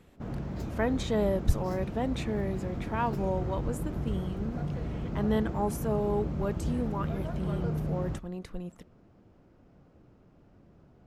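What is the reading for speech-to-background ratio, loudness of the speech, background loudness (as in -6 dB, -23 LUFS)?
1.5 dB, -33.5 LUFS, -35.0 LUFS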